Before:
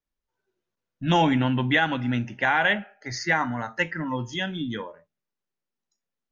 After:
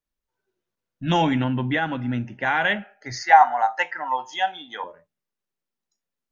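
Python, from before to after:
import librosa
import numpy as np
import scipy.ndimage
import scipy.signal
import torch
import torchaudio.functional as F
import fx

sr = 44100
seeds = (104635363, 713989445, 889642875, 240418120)

y = fx.high_shelf(x, sr, hz=2300.0, db=-9.5, at=(1.44, 2.46))
y = fx.highpass_res(y, sr, hz=770.0, q=9.6, at=(3.22, 4.84))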